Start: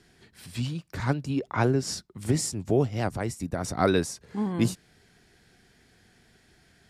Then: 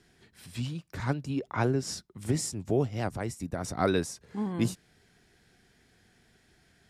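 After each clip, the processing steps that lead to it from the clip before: band-stop 4.5 kHz, Q 27; trim -3.5 dB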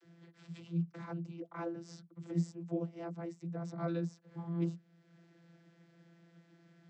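compression 1.5:1, threshold -55 dBFS, peak gain reduction 12.5 dB; vocoder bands 32, saw 169 Hz; trim +3.5 dB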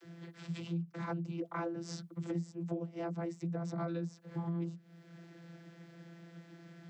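compression 10:1, threshold -43 dBFS, peak gain reduction 16 dB; trim +9 dB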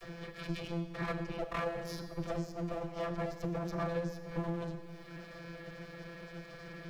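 comb filter that takes the minimum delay 1.7 ms; Schroeder reverb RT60 1.3 s, combs from 29 ms, DRR 8.5 dB; three bands compressed up and down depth 40%; trim +5 dB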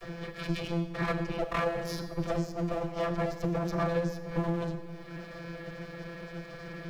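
tape noise reduction on one side only decoder only; trim +6 dB

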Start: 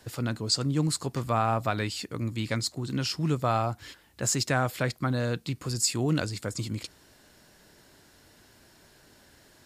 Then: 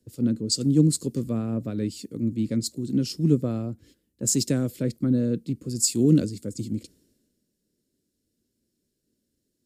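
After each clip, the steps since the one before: FFT filter 120 Hz 0 dB, 230 Hz +10 dB, 520 Hz +1 dB, 790 Hz -21 dB, 8.4 kHz -1 dB; three bands expanded up and down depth 70%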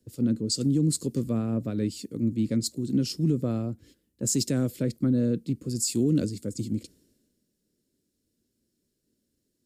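peak limiter -16 dBFS, peak gain reduction 8.5 dB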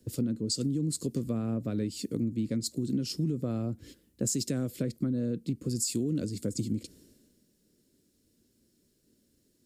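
compression 6:1, threshold -35 dBFS, peak gain reduction 14.5 dB; trim +7 dB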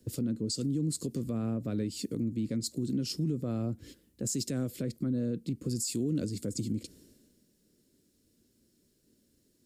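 peak limiter -23.5 dBFS, peak gain reduction 6 dB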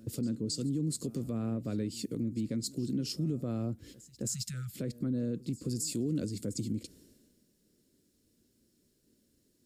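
spectral selection erased 4.28–4.76 s, 210–1200 Hz; reverse echo 268 ms -20.5 dB; trim -1.5 dB

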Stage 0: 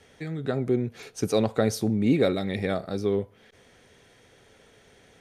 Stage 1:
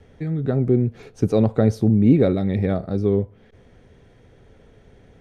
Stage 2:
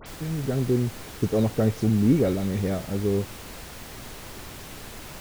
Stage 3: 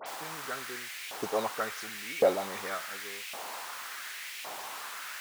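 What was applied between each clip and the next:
tilt EQ -3.5 dB/octave
added noise pink -35 dBFS; phase dispersion highs, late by 62 ms, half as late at 2.6 kHz; trim -5 dB
LFO high-pass saw up 0.9 Hz 680–2500 Hz; bass shelf 290 Hz +9 dB; tape noise reduction on one side only decoder only

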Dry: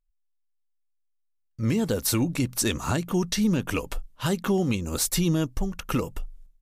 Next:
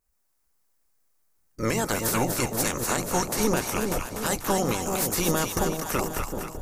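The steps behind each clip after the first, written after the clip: spectral peaks clipped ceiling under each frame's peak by 24 dB; peaking EQ 3.2 kHz -11 dB 1.1 oct; two-band feedback delay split 810 Hz, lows 381 ms, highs 244 ms, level -5 dB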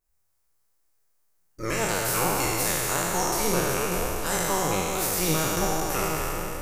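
spectral sustain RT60 2.91 s; peaking EQ 240 Hz -12.5 dB 0.28 oct; flange 1.2 Hz, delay 2.5 ms, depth 5.3 ms, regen +60%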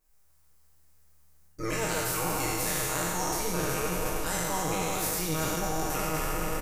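comb 6.4 ms, depth 65%; reverse; compression 10:1, threshold -32 dBFS, peak gain reduction 16 dB; reverse; frequency-shifting echo 99 ms, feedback 35%, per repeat -74 Hz, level -13.5 dB; trim +5.5 dB

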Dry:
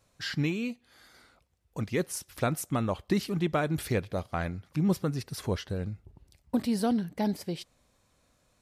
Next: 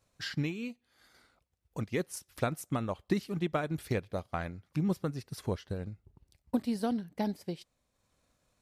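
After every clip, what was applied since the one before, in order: transient shaper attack +4 dB, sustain -5 dB; trim -5.5 dB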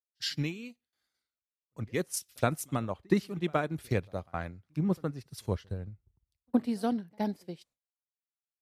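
reverse echo 67 ms -23.5 dB; gate with hold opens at -59 dBFS; three bands expanded up and down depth 100%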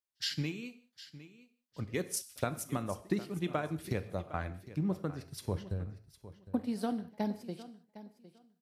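compression 2.5:1, threshold -31 dBFS, peak gain reduction 8.5 dB; feedback delay 758 ms, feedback 19%, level -16 dB; gated-style reverb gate 220 ms falling, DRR 11.5 dB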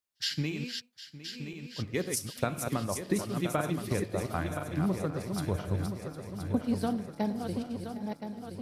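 backward echo that repeats 511 ms, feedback 69%, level -6 dB; trim +3 dB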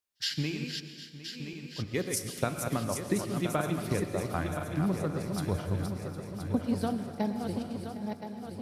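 plate-style reverb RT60 1.7 s, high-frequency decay 0.75×, pre-delay 105 ms, DRR 10 dB

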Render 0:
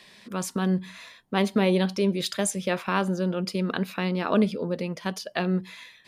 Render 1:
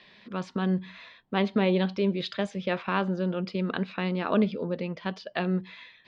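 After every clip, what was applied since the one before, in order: low-pass 4.1 kHz 24 dB/octave; trim -2 dB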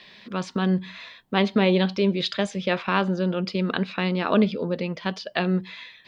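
treble shelf 4.3 kHz +9.5 dB; trim +4 dB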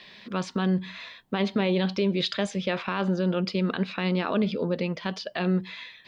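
peak limiter -16 dBFS, peak gain reduction 10 dB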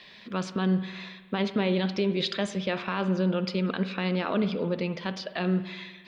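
spring tank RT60 1.4 s, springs 53 ms, chirp 60 ms, DRR 11.5 dB; trim -1.5 dB

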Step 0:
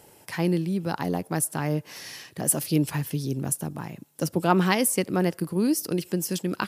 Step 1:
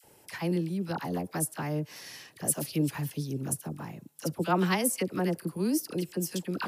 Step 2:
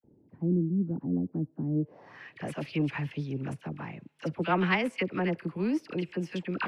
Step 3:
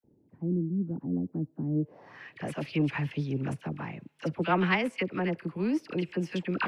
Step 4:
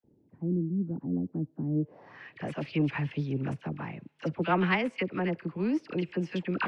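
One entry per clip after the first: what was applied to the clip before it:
phase dispersion lows, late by 43 ms, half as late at 990 Hz; trim -5 dB
saturation -17.5 dBFS, distortion -22 dB; low-pass sweep 270 Hz -> 2.4 kHz, 1.74–2.31 s
gain riding within 5 dB 2 s
distance through air 81 m

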